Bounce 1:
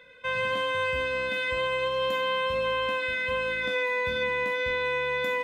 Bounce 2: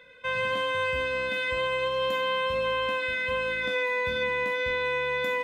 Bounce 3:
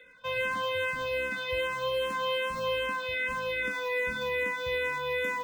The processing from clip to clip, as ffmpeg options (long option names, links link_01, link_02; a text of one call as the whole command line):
ffmpeg -i in.wav -af anull out.wav
ffmpeg -i in.wav -filter_complex "[0:a]acrossover=split=280|830[link_01][link_02][link_03];[link_02]acrusher=bits=4:mode=log:mix=0:aa=0.000001[link_04];[link_01][link_04][link_03]amix=inputs=3:normalize=0,asplit=2[link_05][link_06];[link_06]afreqshift=-2.5[link_07];[link_05][link_07]amix=inputs=2:normalize=1" out.wav